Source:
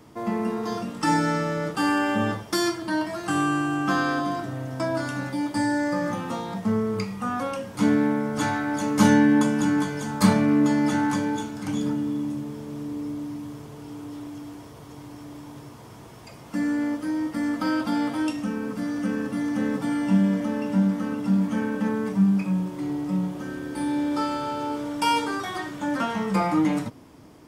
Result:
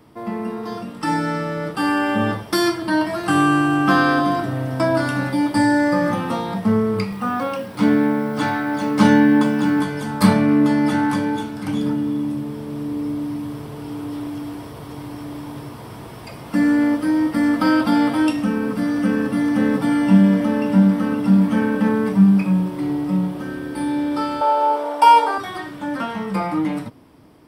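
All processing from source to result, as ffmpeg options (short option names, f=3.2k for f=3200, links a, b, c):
-filter_complex "[0:a]asettb=1/sr,asplit=3[a][b][c];[a]atrim=end=7.124[d];[b]atrim=start=7.12:end=9.8,asetpts=PTS-STARTPTS,afade=t=in:d=0.004:c=qsin,afade=t=out:st=2.676:d=0.004:c=qsin,highpass=110,lowpass=7.7k,acrusher=bits=9:dc=4:mix=0:aa=0.000001[e];[c]atrim=start=9.796[f];[d][e]acrossfade=d=0.004:c1=hsin:c2=qsin[g];[g][f]acrossfade=d=0.004:c1=qsin:c2=hsin,asettb=1/sr,asplit=3[h][i][j];[h]atrim=end=24.414[k];[i]atrim=start=24.41:end=25.38,asetpts=PTS-STARTPTS,afade=t=in:d=0.004:c=qsin,afade=t=out:st=0.966:d=0.004:c=qsin,highpass=f=520:t=q:w=1.7,equalizer=f=820:t=o:w=0.96:g=10.5[l];[j]atrim=start=25.376[m];[k][l]acrossfade=d=0.004:c1=hsin:c2=qsin[n];[n][m]acrossfade=d=0.004:c1=qsin:c2=hsin,equalizer=f=6.7k:w=3.9:g=-13.5,dynaudnorm=f=510:g=9:m=9dB"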